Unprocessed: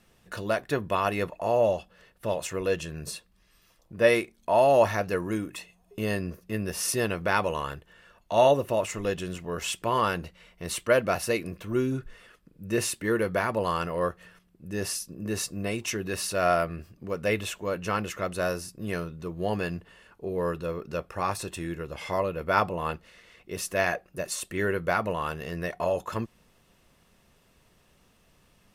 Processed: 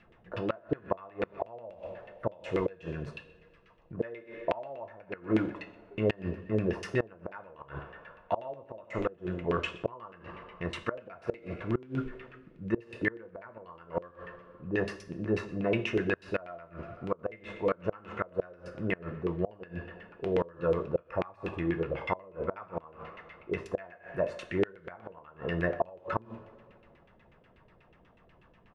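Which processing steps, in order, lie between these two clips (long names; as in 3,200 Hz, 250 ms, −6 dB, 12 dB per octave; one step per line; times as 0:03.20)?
auto-filter low-pass saw down 8.2 Hz 360–2,800 Hz
on a send: single-tap delay 129 ms −22.5 dB
on the sum: coupled-rooms reverb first 0.48 s, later 2.1 s, from −18 dB, DRR 7 dB
gate with flip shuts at −16 dBFS, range −26 dB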